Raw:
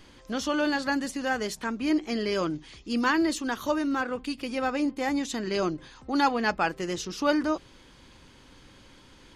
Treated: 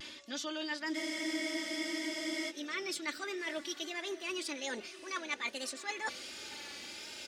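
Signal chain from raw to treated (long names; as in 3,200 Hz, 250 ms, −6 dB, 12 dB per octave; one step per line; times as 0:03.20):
gliding playback speed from 104% → 153%
meter weighting curve D
reversed playback
downward compressor 16 to 1, threshold −37 dBFS, peak gain reduction 23.5 dB
reversed playback
high-pass filter 94 Hz 12 dB per octave
comb filter 3.4 ms
feedback delay with all-pass diffusion 607 ms, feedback 45%, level −14.5 dB
pitch vibrato 1.3 Hz 56 cents
frozen spectrum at 0:00.97, 1.52 s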